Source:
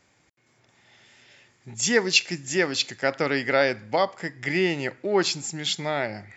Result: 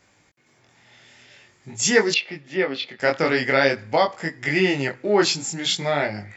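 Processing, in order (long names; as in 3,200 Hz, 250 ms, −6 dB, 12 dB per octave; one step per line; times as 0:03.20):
chorus effect 0.47 Hz, delay 19 ms, depth 5.4 ms
0:02.14–0:03.00: loudspeaker in its box 250–3,200 Hz, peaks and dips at 330 Hz −7 dB, 710 Hz −3 dB, 1,000 Hz −5 dB, 1,600 Hz −9 dB, 2,600 Hz −5 dB
level +7 dB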